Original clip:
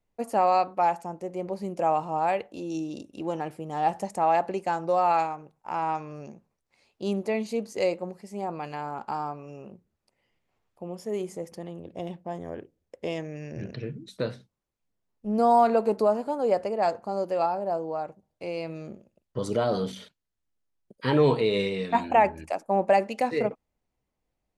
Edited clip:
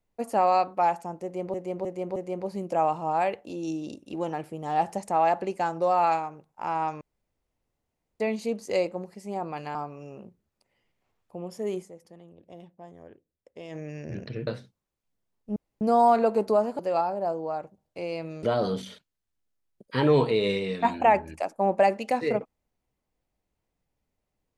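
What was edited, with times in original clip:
1.23–1.54 s: loop, 4 plays
6.08–7.27 s: room tone
8.82–9.22 s: delete
11.27–13.23 s: dip -11.5 dB, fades 0.37 s exponential
13.94–14.23 s: delete
15.32 s: insert room tone 0.25 s
16.30–17.24 s: delete
18.88–19.53 s: delete

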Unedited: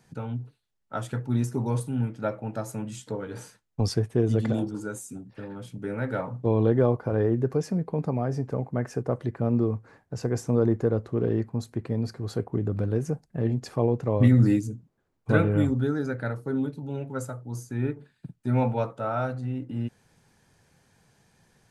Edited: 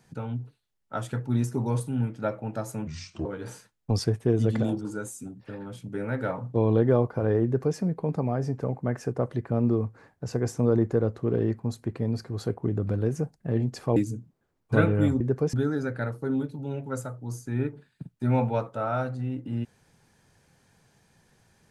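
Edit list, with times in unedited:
2.87–3.15 s: speed 73%
7.34–7.67 s: copy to 15.77 s
13.86–14.53 s: delete

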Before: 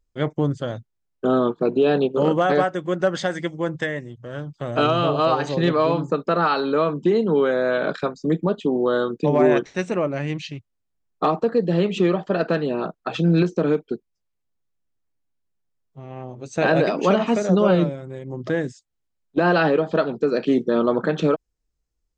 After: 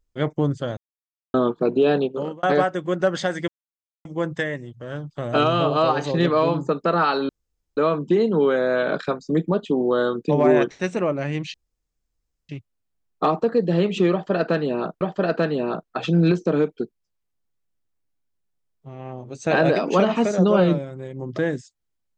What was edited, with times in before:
0.77–1.34 s: mute
1.91–2.43 s: fade out
3.48 s: insert silence 0.57 s
6.72 s: insert room tone 0.48 s
10.49 s: insert room tone 0.95 s
12.12–13.01 s: loop, 2 plays

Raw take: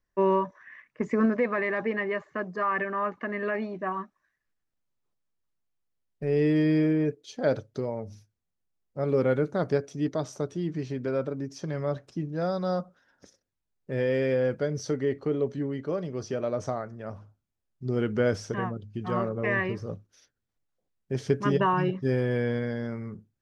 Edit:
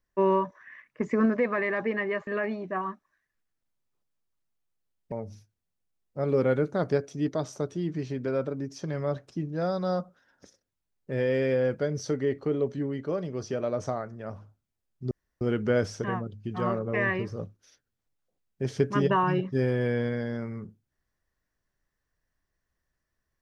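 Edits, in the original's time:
2.27–3.38 s: delete
6.23–7.92 s: delete
17.91 s: insert room tone 0.30 s

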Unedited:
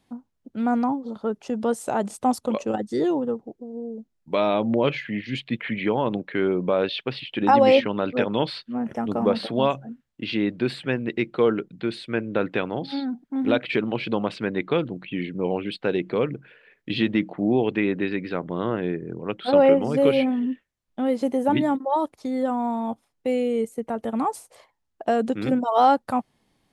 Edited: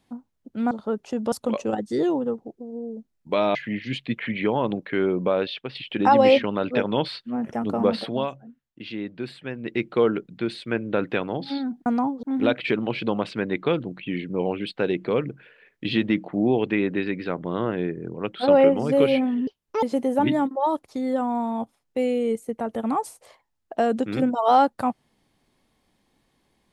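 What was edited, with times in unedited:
0.71–1.08 s: move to 13.28 s
1.69–2.33 s: delete
4.56–4.97 s: delete
6.71–7.17 s: fade out, to -7.5 dB
9.44–11.24 s: dip -8 dB, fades 0.27 s
20.52–21.12 s: speed 168%

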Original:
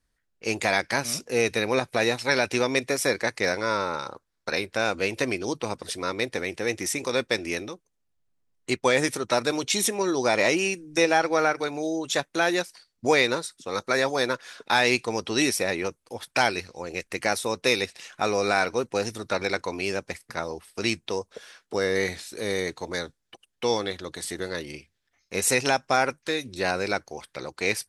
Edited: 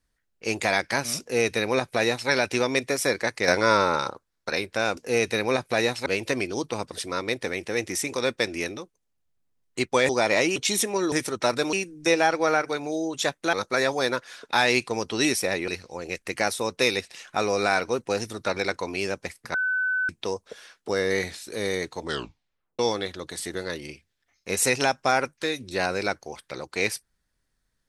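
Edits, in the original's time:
1.20–2.29 s: copy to 4.97 s
3.48–4.10 s: gain +6 dB
9.00–9.61 s: swap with 10.17–10.64 s
12.44–13.70 s: delete
15.85–16.53 s: delete
20.39–20.94 s: bleep 1.51 kHz -22 dBFS
22.86 s: tape stop 0.78 s

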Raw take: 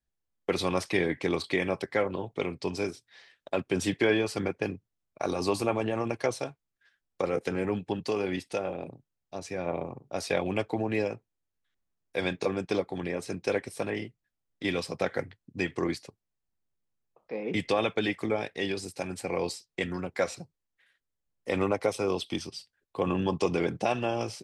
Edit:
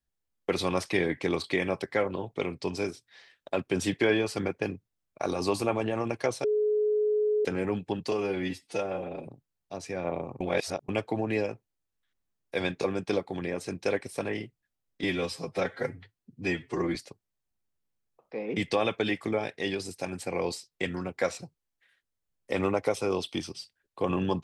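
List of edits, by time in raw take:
6.44–7.45 s: bleep 423 Hz -22.5 dBFS
8.12–8.89 s: stretch 1.5×
10.02–10.50 s: reverse
14.65–15.93 s: stretch 1.5×

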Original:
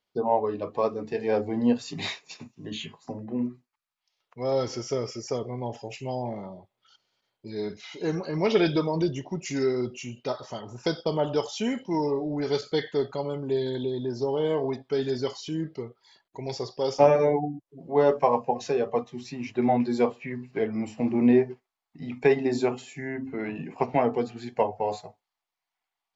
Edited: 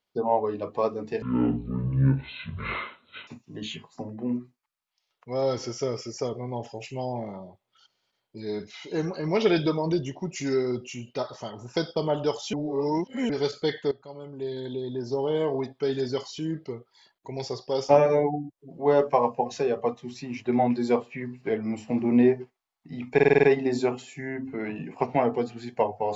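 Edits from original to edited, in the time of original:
1.22–2.37 s: speed 56%
11.63–12.39 s: reverse
13.01–14.31 s: fade in, from -17.5 dB
22.23 s: stutter 0.05 s, 7 plays

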